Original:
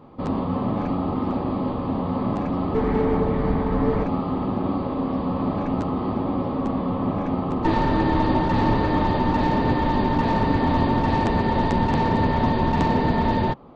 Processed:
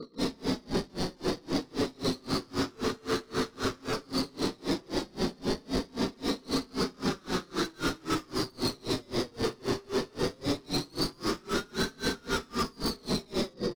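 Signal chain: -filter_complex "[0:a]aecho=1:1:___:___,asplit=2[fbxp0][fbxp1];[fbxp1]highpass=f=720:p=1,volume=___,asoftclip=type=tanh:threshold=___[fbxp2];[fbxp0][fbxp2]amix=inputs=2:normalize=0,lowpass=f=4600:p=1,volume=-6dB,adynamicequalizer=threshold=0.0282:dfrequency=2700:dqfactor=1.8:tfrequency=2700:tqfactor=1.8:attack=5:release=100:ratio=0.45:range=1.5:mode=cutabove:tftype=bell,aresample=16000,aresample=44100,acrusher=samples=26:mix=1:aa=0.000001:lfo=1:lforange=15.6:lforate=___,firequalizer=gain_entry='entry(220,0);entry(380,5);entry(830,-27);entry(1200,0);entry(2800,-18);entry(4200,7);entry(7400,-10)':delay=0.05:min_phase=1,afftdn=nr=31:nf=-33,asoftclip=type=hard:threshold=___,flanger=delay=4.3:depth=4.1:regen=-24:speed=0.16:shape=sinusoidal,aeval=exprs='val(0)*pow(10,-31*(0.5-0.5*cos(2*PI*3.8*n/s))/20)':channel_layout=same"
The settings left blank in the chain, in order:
197, 0.0708, 36dB, -8dB, 0.23, -21dB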